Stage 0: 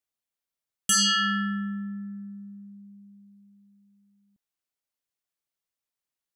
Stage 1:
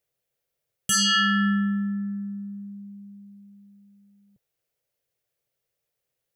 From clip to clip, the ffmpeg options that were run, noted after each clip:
-af "equalizer=f=125:t=o:w=1:g=10,equalizer=f=250:t=o:w=1:g=-9,equalizer=f=500:t=o:w=1:g=12,equalizer=f=1k:t=o:w=1:g=-8,equalizer=f=4k:t=o:w=1:g=-3,equalizer=f=8k:t=o:w=1:g=-4,alimiter=level_in=0.5dB:limit=-24dB:level=0:latency=1,volume=-0.5dB,volume=8.5dB"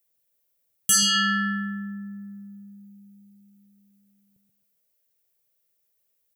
-filter_complex "[0:a]aemphasis=mode=production:type=50kf,asplit=2[a][b];[b]adelay=131,lowpass=f=1.4k:p=1,volume=-5dB,asplit=2[c][d];[d]adelay=131,lowpass=f=1.4k:p=1,volume=0.3,asplit=2[e][f];[f]adelay=131,lowpass=f=1.4k:p=1,volume=0.3,asplit=2[g][h];[h]adelay=131,lowpass=f=1.4k:p=1,volume=0.3[i];[c][e][g][i]amix=inputs=4:normalize=0[j];[a][j]amix=inputs=2:normalize=0,volume=-3.5dB"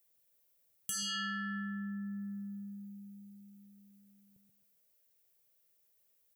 -af "alimiter=limit=-21dB:level=0:latency=1,acompressor=threshold=-39dB:ratio=3"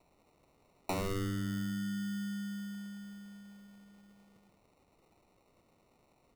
-filter_complex "[0:a]asplit=2[a][b];[b]volume=35.5dB,asoftclip=hard,volume=-35.5dB,volume=-7dB[c];[a][c]amix=inputs=2:normalize=0,acrusher=samples=27:mix=1:aa=0.000001"

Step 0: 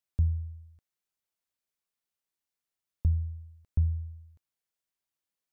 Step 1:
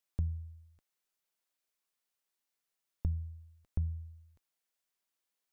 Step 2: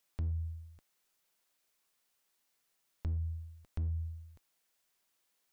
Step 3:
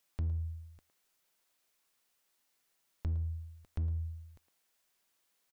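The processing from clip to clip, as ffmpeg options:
-af "equalizer=f=81:w=0.56:g=-10.5,volume=2.5dB"
-af "acompressor=threshold=-37dB:ratio=8,asoftclip=type=hard:threshold=-39dB,volume=8.5dB"
-filter_complex "[0:a]asplit=2[a][b];[b]adelay=110,highpass=300,lowpass=3.4k,asoftclip=type=hard:threshold=-39.5dB,volume=-9dB[c];[a][c]amix=inputs=2:normalize=0,volume=1dB"

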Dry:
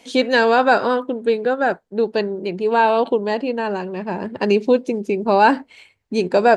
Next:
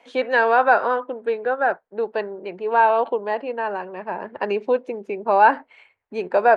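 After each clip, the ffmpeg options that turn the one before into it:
-filter_complex "[0:a]acrossover=split=500 2300:gain=0.158 1 0.0891[a][b][c];[a][b][c]amix=inputs=3:normalize=0,volume=1dB"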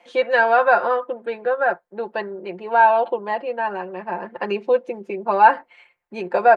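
-af "aecho=1:1:5.7:0.72,volume=-1dB"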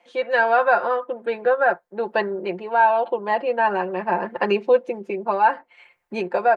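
-af "dynaudnorm=f=180:g=3:m=12dB,volume=-5.5dB"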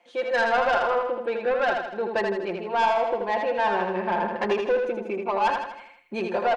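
-af "asoftclip=type=tanh:threshold=-16dB,aecho=1:1:80|160|240|320|400|480:0.596|0.298|0.149|0.0745|0.0372|0.0186,volume=-2dB"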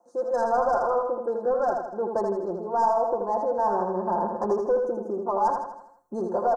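-af "asuperstop=centerf=2700:order=8:qfactor=0.6"

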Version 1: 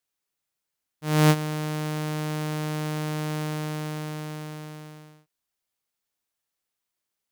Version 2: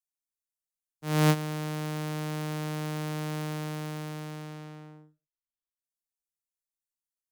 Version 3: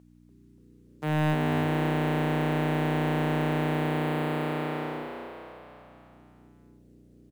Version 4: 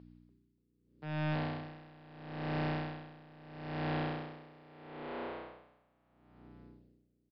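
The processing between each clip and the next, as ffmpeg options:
-filter_complex "[0:a]anlmdn=0.1,acrossover=split=230|6600[a][b][c];[c]acompressor=mode=upward:threshold=-54dB:ratio=2.5[d];[a][b][d]amix=inputs=3:normalize=0,volume=-4dB"
-filter_complex "[0:a]aeval=exprs='val(0)+0.001*(sin(2*PI*60*n/s)+sin(2*PI*2*60*n/s)/2+sin(2*PI*3*60*n/s)/3+sin(2*PI*4*60*n/s)/4+sin(2*PI*5*60*n/s)/5)':c=same,asplit=2[a][b];[b]highpass=f=720:p=1,volume=34dB,asoftclip=type=tanh:threshold=-11dB[c];[a][c]amix=inputs=2:normalize=0,lowpass=f=2.4k:p=1,volume=-6dB,asplit=7[d][e][f][g][h][i][j];[e]adelay=290,afreqshift=92,volume=-6dB[k];[f]adelay=580,afreqshift=184,volume=-11.8dB[l];[g]adelay=870,afreqshift=276,volume=-17.7dB[m];[h]adelay=1160,afreqshift=368,volume=-23.5dB[n];[i]adelay=1450,afreqshift=460,volume=-29.4dB[o];[j]adelay=1740,afreqshift=552,volume=-35.2dB[p];[d][k][l][m][n][o][p]amix=inputs=7:normalize=0,volume=-7dB"
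-af "asoftclip=type=tanh:threshold=-33dB,aresample=11025,aresample=44100,aeval=exprs='val(0)*pow(10,-23*(0.5-0.5*cos(2*PI*0.76*n/s))/20)':c=same,volume=1dB"

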